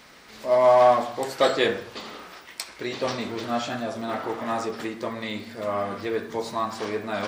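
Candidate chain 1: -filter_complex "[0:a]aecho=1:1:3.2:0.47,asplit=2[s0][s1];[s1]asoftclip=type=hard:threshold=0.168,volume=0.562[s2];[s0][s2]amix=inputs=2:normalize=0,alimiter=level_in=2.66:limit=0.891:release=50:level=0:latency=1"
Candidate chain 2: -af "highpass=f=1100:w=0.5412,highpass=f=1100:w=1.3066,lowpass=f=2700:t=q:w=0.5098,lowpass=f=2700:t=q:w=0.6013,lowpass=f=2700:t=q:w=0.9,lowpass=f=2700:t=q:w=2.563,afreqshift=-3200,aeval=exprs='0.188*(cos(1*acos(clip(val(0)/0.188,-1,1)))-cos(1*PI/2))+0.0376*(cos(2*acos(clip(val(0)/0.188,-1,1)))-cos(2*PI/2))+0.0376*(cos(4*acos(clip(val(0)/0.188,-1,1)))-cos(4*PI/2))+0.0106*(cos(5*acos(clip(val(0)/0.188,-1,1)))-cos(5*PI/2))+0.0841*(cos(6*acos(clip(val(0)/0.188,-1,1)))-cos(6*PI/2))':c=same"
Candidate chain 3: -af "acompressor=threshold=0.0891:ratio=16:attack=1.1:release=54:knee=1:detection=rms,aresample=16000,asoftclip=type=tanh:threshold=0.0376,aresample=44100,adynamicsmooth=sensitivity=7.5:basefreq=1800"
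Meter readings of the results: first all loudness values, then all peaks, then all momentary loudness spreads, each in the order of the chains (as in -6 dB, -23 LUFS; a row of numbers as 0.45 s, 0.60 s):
-14.0 LUFS, -30.0 LUFS, -34.5 LUFS; -1.0 dBFS, -8.5 dBFS, -27.0 dBFS; 15 LU, 17 LU, 9 LU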